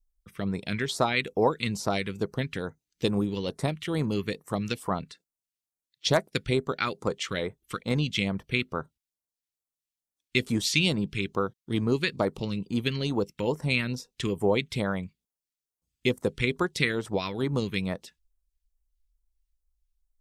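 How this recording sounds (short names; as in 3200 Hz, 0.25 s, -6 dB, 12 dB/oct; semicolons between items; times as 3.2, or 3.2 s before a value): phasing stages 2, 2.3 Hz, lowest notch 700–2800 Hz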